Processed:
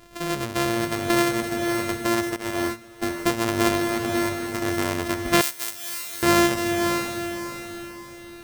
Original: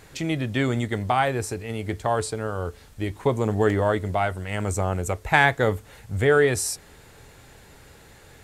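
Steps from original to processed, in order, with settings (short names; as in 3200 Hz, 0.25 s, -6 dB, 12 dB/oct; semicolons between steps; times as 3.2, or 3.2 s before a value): sample sorter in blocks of 128 samples; notch 850 Hz, Q 12; 3.77–4.62 level quantiser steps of 9 dB; bell 100 Hz -5 dB 2.5 oct; diffused feedback echo 0.546 s, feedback 42%, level -5 dB; 2.36–3.09 gate -27 dBFS, range -13 dB; 5.41–6.23 pre-emphasis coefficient 0.97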